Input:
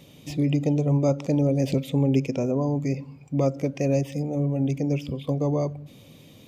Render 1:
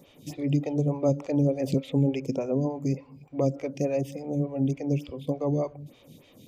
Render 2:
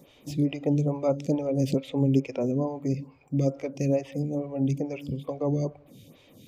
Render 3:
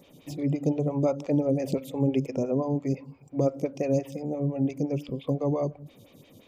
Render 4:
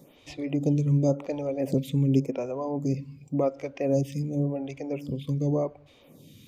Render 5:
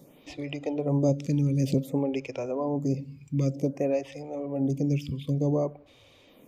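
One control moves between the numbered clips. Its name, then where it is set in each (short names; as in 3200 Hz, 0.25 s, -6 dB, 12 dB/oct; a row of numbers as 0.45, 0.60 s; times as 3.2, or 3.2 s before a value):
photocell phaser, rate: 3.4, 2.3, 5.8, 0.9, 0.54 Hz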